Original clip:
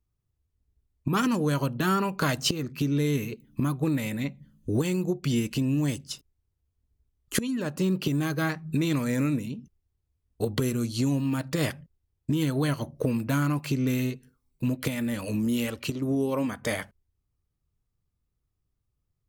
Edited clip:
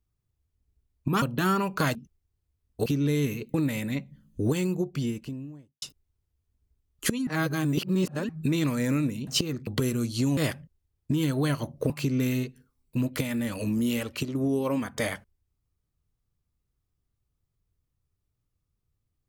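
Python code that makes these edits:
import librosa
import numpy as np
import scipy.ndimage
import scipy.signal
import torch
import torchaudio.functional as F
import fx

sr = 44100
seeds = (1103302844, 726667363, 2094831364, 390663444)

y = fx.studio_fade_out(x, sr, start_s=4.85, length_s=1.26)
y = fx.edit(y, sr, fx.cut(start_s=1.22, length_s=0.42),
    fx.swap(start_s=2.37, length_s=0.4, other_s=9.56, other_length_s=0.91),
    fx.cut(start_s=3.45, length_s=0.38),
    fx.reverse_span(start_s=7.56, length_s=1.02),
    fx.cut(start_s=11.17, length_s=0.39),
    fx.cut(start_s=13.09, length_s=0.48), tone=tone)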